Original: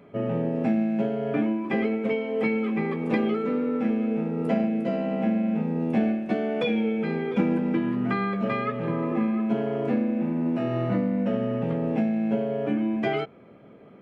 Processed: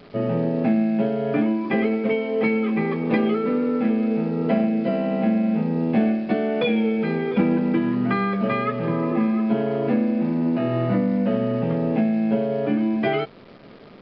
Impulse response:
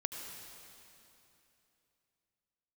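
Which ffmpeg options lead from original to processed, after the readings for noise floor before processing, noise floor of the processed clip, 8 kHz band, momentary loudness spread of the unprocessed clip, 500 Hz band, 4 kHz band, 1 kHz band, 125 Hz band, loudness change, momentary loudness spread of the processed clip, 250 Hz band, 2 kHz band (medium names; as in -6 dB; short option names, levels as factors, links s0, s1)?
-49 dBFS, -45 dBFS, no reading, 3 LU, +4.0 dB, +4.0 dB, +4.0 dB, +4.0 dB, +4.0 dB, 2 LU, +4.0 dB, +4.0 dB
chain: -af "acontrast=84,acrusher=bits=8:dc=4:mix=0:aa=0.000001,aresample=11025,aresample=44100,volume=0.708"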